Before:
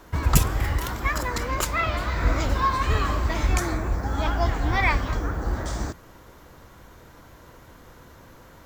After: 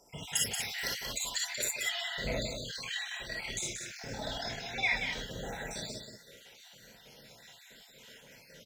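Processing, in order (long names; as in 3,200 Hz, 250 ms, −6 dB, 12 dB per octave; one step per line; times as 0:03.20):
time-frequency cells dropped at random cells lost 73%
meter weighting curve D
speech leveller within 4 dB 0.5 s
0:02.40–0:04.58: amplitude modulation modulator 39 Hz, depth 45%
phaser with its sweep stopped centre 310 Hz, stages 6
single-tap delay 181 ms −7 dB
reverb whose tail is shaped and stops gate 80 ms rising, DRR −1.5 dB
level −7.5 dB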